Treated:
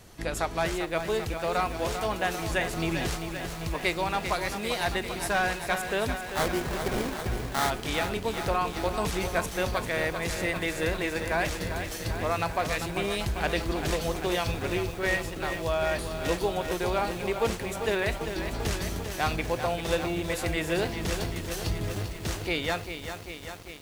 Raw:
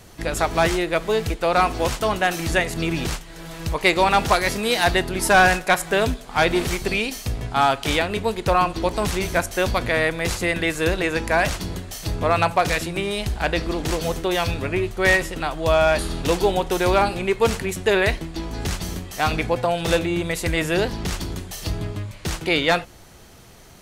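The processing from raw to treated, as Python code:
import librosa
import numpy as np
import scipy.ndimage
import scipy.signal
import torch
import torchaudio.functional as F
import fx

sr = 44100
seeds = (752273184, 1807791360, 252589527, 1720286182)

y = fx.rider(x, sr, range_db=4, speed_s=0.5)
y = fx.sample_hold(y, sr, seeds[0], rate_hz=2700.0, jitter_pct=20, at=(6.17, 7.69), fade=0.02)
y = fx.echo_crushed(y, sr, ms=394, feedback_pct=80, bits=6, wet_db=-8)
y = F.gain(torch.from_numpy(y), -8.5).numpy()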